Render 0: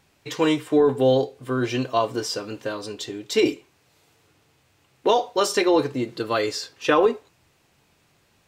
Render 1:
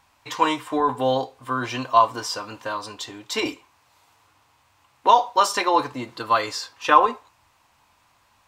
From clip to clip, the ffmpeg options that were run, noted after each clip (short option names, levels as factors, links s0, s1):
-af "equalizer=f=160:t=o:w=0.67:g=-11,equalizer=f=400:t=o:w=0.67:g=-11,equalizer=f=1000:t=o:w=0.67:g=12"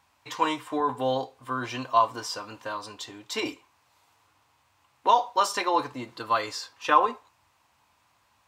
-af "highpass=53,volume=0.562"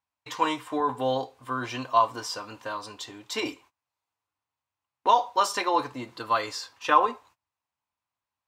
-af "agate=range=0.0631:threshold=0.00224:ratio=16:detection=peak"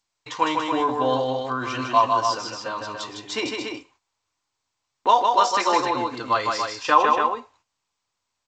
-af "aecho=1:1:154.5|285.7:0.631|0.501,volume=1.41" -ar 16000 -c:a g722